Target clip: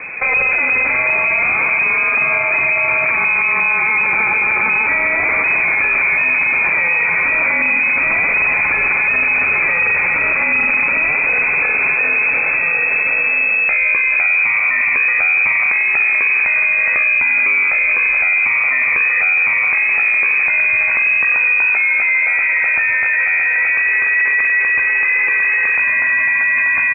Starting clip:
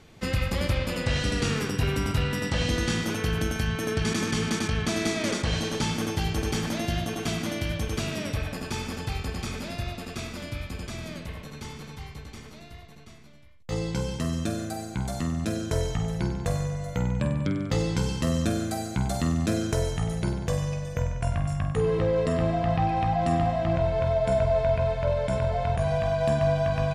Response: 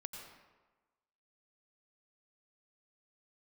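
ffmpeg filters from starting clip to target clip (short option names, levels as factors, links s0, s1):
-filter_complex "[0:a]dynaudnorm=f=410:g=21:m=2.99,aecho=1:1:415|830|1245|1660|2075|2490|2905:0.282|0.169|0.101|0.0609|0.0365|0.0219|0.0131,asplit=2[s0][s1];[1:a]atrim=start_sample=2205,atrim=end_sample=3087,adelay=44[s2];[s1][s2]afir=irnorm=-1:irlink=0,volume=0.224[s3];[s0][s3]amix=inputs=2:normalize=0,lowpass=f=2200:t=q:w=0.5098,lowpass=f=2200:t=q:w=0.6013,lowpass=f=2200:t=q:w=0.9,lowpass=f=2200:t=q:w=2.563,afreqshift=-2600,alimiter=level_in=39.8:limit=0.891:release=50:level=0:latency=1,volume=0.447"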